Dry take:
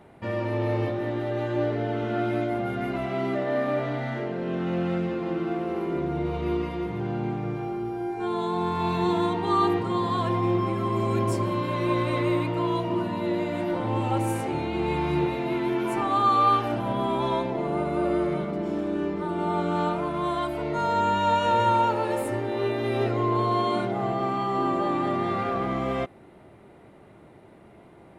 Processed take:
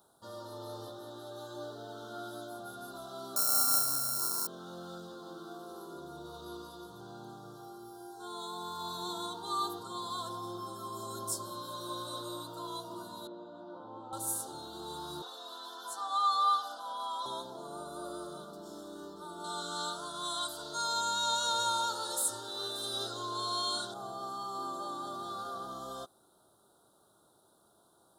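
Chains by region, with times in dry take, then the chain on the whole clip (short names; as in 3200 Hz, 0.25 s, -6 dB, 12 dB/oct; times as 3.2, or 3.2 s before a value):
3.36–4.47 sample sorter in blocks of 32 samples + Butterworth band-stop 3400 Hz, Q 1.7 + doubler 31 ms -5 dB
13.27–14.13 HPF 170 Hz + tape spacing loss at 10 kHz 44 dB
15.22–17.26 HPF 270 Hz + three-band isolator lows -15 dB, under 550 Hz, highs -13 dB, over 7000 Hz + comb 4 ms, depth 100%
19.44–23.94 band shelf 3700 Hz +9 dB 2.8 oct + echo 0.58 s -17 dB
whole clip: Chebyshev band-stop 1400–3600 Hz, order 3; pre-emphasis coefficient 0.97; gain +6 dB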